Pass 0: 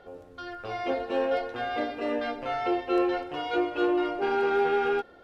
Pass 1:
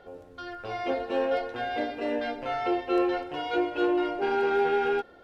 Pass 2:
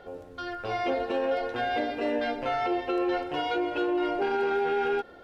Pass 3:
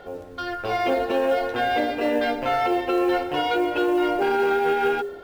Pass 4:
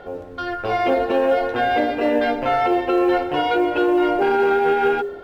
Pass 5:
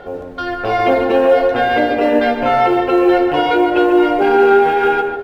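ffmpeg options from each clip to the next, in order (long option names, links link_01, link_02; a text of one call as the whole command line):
ffmpeg -i in.wav -af "bandreject=frequency=1200:width=17" out.wav
ffmpeg -i in.wav -af "alimiter=limit=-23dB:level=0:latency=1:release=97,volume=3.5dB" out.wav
ffmpeg -i in.wav -af "bandreject=frequency=57.74:width_type=h:width=4,bandreject=frequency=115.48:width_type=h:width=4,bandreject=frequency=173.22:width_type=h:width=4,bandreject=frequency=230.96:width_type=h:width=4,bandreject=frequency=288.7:width_type=h:width=4,bandreject=frequency=346.44:width_type=h:width=4,bandreject=frequency=404.18:width_type=h:width=4,bandreject=frequency=461.92:width_type=h:width=4,bandreject=frequency=519.66:width_type=h:width=4,bandreject=frequency=577.4:width_type=h:width=4,acrusher=bits=8:mode=log:mix=0:aa=0.000001,volume=6dB" out.wav
ffmpeg -i in.wav -af "highshelf=frequency=4300:gain=-10.5,volume=4dB" out.wav
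ffmpeg -i in.wav -filter_complex "[0:a]asplit=2[link_01][link_02];[link_02]adelay=144,lowpass=frequency=2200:poles=1,volume=-6dB,asplit=2[link_03][link_04];[link_04]adelay=144,lowpass=frequency=2200:poles=1,volume=0.35,asplit=2[link_05][link_06];[link_06]adelay=144,lowpass=frequency=2200:poles=1,volume=0.35,asplit=2[link_07][link_08];[link_08]adelay=144,lowpass=frequency=2200:poles=1,volume=0.35[link_09];[link_01][link_03][link_05][link_07][link_09]amix=inputs=5:normalize=0,volume=4.5dB" out.wav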